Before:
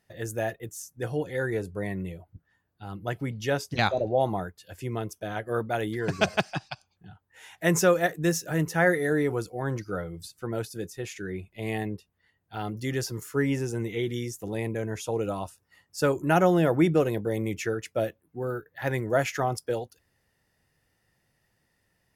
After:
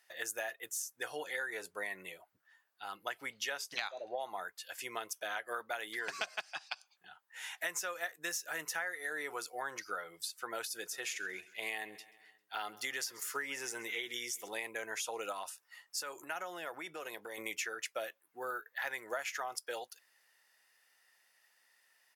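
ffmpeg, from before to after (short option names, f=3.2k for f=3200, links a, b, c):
-filter_complex "[0:a]asplit=3[a][b][c];[a]afade=t=out:st=10.85:d=0.02[d];[b]aecho=1:1:133|266|399|532:0.0708|0.0411|0.0238|0.0138,afade=t=in:st=10.85:d=0.02,afade=t=out:st=14.47:d=0.02[e];[c]afade=t=in:st=14.47:d=0.02[f];[d][e][f]amix=inputs=3:normalize=0,asettb=1/sr,asplit=3[g][h][i];[g]atrim=end=15.324[j];[h]atrim=start=15.32:end=17.38,asetpts=PTS-STARTPTS,afade=t=in:d=0.004:c=qsin,afade=t=out:st=2.056:d=0.004:c=qsin,acompressor=threshold=-32dB:ratio=6:attack=3.2:release=140:knee=1:detection=peak[k];[i]atrim=start=17.376[l];[j][k]acrossfade=d=0.004:c1=hsin:c2=qsin[m];[m][l]acrossfade=d=0.004:c1=qsin:c2=hsin,highpass=1.1k,acompressor=threshold=-40dB:ratio=10,volume=5dB"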